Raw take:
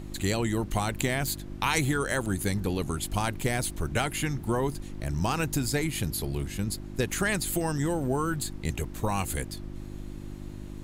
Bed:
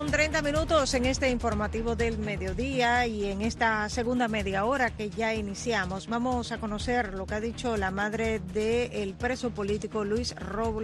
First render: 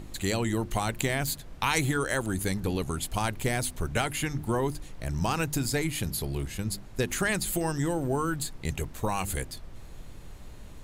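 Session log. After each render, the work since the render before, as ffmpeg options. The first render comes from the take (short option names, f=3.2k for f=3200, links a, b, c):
-af "bandreject=f=50:t=h:w=4,bandreject=f=100:t=h:w=4,bandreject=f=150:t=h:w=4,bandreject=f=200:t=h:w=4,bandreject=f=250:t=h:w=4,bandreject=f=300:t=h:w=4,bandreject=f=350:t=h:w=4"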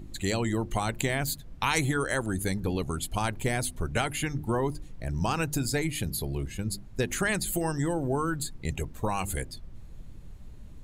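-af "afftdn=nr=10:nf=-44"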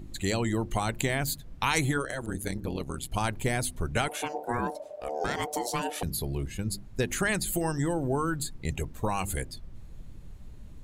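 -filter_complex "[0:a]asettb=1/sr,asplit=3[a][b][c];[a]atrim=end=1.984[d];[b]atrim=start=1.98:end=3.12,asetpts=PTS-STARTPTS,afade=t=in:d=0.004:c=qsin,afade=t=out:st=1.136:d=0.004:c=qsin,tremolo=f=130:d=0.857[e];[c]atrim=start=3.116[f];[d][e]acrossfade=d=0.004:c1=hsin:c2=qsin[g];[g][f]acrossfade=d=0.004:c1=qsin:c2=hsin,asettb=1/sr,asplit=3[h][i][j];[h]atrim=end=4.084[k];[i]atrim=start=4.08:end=6.03,asetpts=PTS-STARTPTS,afade=t=in:d=0.004:c=qsin,afade=t=out:st=1.946:d=0.004:c=qsin,aeval=exprs='val(0)*sin(2*PI*600*n/s)':c=same[l];[j]atrim=start=6.026[m];[k][l]acrossfade=d=0.004:c1=hsin:c2=qsin[n];[n][m]acrossfade=d=0.004:c1=qsin:c2=hsin"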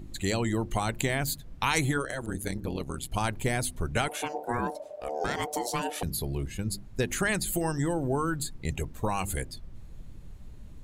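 -af anull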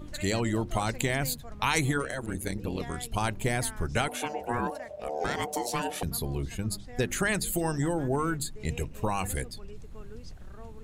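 -filter_complex "[1:a]volume=-19.5dB[a];[0:a][a]amix=inputs=2:normalize=0"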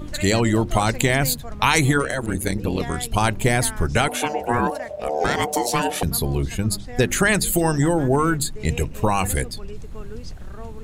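-af "volume=9.5dB,alimiter=limit=-3dB:level=0:latency=1"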